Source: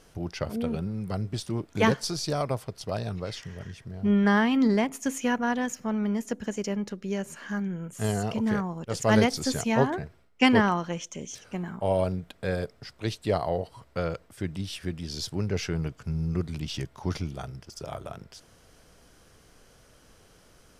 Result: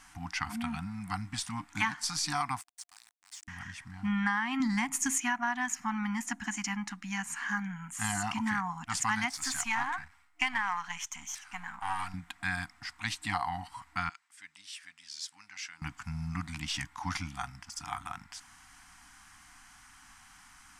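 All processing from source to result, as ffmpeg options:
ffmpeg -i in.wav -filter_complex "[0:a]asettb=1/sr,asplit=3[link_01][link_02][link_03];[link_01]atrim=end=2.614[link_04];[link_02]atrim=start=2.61:end=3.48,asetpts=PTS-STARTPTS,afade=type=in:duration=0.004:curve=qsin,afade=type=out:start_time=0.866:duration=0.004:curve=qsin,bandpass=frequency=7900:width_type=q:width=2.5,aeval=exprs='val(0)*gte(abs(val(0)),0.00251)':channel_layout=same[link_05];[link_03]atrim=start=3.476[link_06];[link_04][link_05]acrossfade=duration=0.004:curve1=hsin:curve2=qsin[link_07];[link_07][link_06]acrossfade=duration=0.004:curve1=qsin:curve2=hsin,asettb=1/sr,asplit=3[link_08][link_09][link_10];[link_08]atrim=end=4.604[link_11];[link_09]atrim=start=4.6:end=5.2,asetpts=PTS-STARTPTS,afade=type=in:duration=0.004:curve=qsin,afade=type=out:start_time=0.596:duration=0.004:curve=qsin,bass=frequency=250:gain=9,treble=frequency=4000:gain=7,acompressor=mode=upward:threshold=-30dB:ratio=2.5:attack=3.2:release=140:knee=2.83:detection=peak[link_12];[link_10]atrim=start=5.196[link_13];[link_11][link_12]acrossfade=duration=0.004:curve1=hsin:curve2=qsin[link_14];[link_14][link_13]acrossfade=duration=0.004:curve1=qsin:curve2=hsin,asettb=1/sr,asplit=3[link_15][link_16][link_17];[link_15]atrim=end=9.314[link_18];[link_16]atrim=start=9.31:end=12.14,asetpts=PTS-STARTPTS,afade=type=in:duration=0.004:curve=qsin,afade=type=out:start_time=2.826:duration=0.004:curve=qsin,aeval=exprs='if(lt(val(0),0),0.447*val(0),val(0))':channel_layout=same,equalizer=frequency=190:width=0.47:gain=-9[link_19];[link_17]atrim=start=12.136[link_20];[link_18][link_19]acrossfade=duration=0.004:curve1=hsin:curve2=qsin[link_21];[link_21][link_20]acrossfade=duration=0.004:curve1=qsin:curve2=hsin,asettb=1/sr,asplit=3[link_22][link_23][link_24];[link_22]atrim=end=14.094[link_25];[link_23]atrim=start=14.09:end=15.82,asetpts=PTS-STARTPTS,afade=type=in:duration=0.004:curve=qsin,afade=type=out:start_time=1.726:duration=0.004:curve=qsin,aderivative,adynamicsmooth=sensitivity=0.5:basefreq=5800[link_26];[link_24]atrim=start=15.816[link_27];[link_25][link_26]acrossfade=duration=0.004:curve1=hsin:curve2=qsin[link_28];[link_28][link_27]acrossfade=duration=0.004:curve1=qsin:curve2=hsin,afftfilt=real='re*(1-between(b*sr/4096,310,700))':imag='im*(1-between(b*sr/4096,310,700))':win_size=4096:overlap=0.75,equalizer=frequency=125:width_type=o:width=1:gain=-6,equalizer=frequency=1000:width_type=o:width=1:gain=9,equalizer=frequency=2000:width_type=o:width=1:gain=11,equalizer=frequency=8000:width_type=o:width=1:gain=11,acompressor=threshold=-22dB:ratio=10,volume=-4.5dB" out.wav

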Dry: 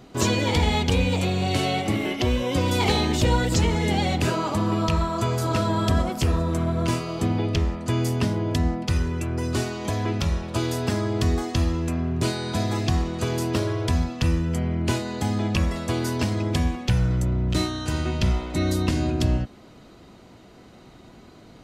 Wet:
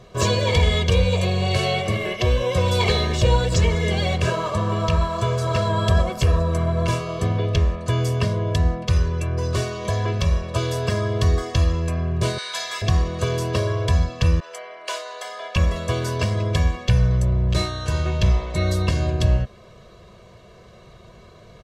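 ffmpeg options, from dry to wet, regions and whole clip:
ffmpeg -i in.wav -filter_complex "[0:a]asettb=1/sr,asplit=3[link_01][link_02][link_03];[link_01]atrim=end=2.824[link_04];[link_02]atrim=start=2.82:end=5.71,asetpts=PTS-STARTPTS,afade=type=in:duration=0.004:curve=qsin,afade=type=out:start_time=2.886:duration=0.004:curve=qsin,lowpass=9800,aeval=exprs='sgn(val(0))*max(abs(val(0))-0.00841,0)':channel_layout=same[link_05];[link_03]atrim=start=5.706[link_06];[link_04][link_05]acrossfade=duration=0.004:curve1=hsin:curve2=qsin[link_07];[link_07][link_06]acrossfade=duration=0.004:curve1=qsin:curve2=hsin,asettb=1/sr,asplit=3[link_08][link_09][link_10];[link_08]atrim=end=12.384[link_11];[link_09]atrim=start=12.38:end=12.82,asetpts=PTS-STARTPTS,afade=type=in:duration=0.004:curve=qsin,afade=type=out:start_time=0.436:duration=0.004:curve=qsin,highpass=1500,acontrast=38[link_12];[link_10]atrim=start=12.816[link_13];[link_11][link_12]acrossfade=duration=0.004:curve1=hsin:curve2=qsin[link_14];[link_14][link_13]acrossfade=duration=0.004:curve1=qsin:curve2=hsin,asettb=1/sr,asplit=3[link_15][link_16][link_17];[link_15]atrim=end=14.404[link_18];[link_16]atrim=start=14.4:end=15.56,asetpts=PTS-STARTPTS,afade=type=in:duration=0.004:curve=qsin,afade=type=out:start_time=1.156:duration=0.004:curve=qsin,highpass=frequency=610:width=0.5412,highpass=frequency=610:width=1.3066,adynamicequalizer=threshold=0.00562:dfrequency=3500:dqfactor=0.7:tfrequency=3500:tqfactor=0.7:attack=5:release=100:ratio=0.375:range=2:mode=cutabove:tftype=highshelf[link_19];[link_17]atrim=start=15.556[link_20];[link_18][link_19]acrossfade=duration=0.004:curve1=hsin:curve2=qsin[link_21];[link_21][link_20]acrossfade=duration=0.004:curve1=qsin:curve2=hsin,highshelf=frequency=11000:gain=-11,aecho=1:1:1.8:0.96" out.wav

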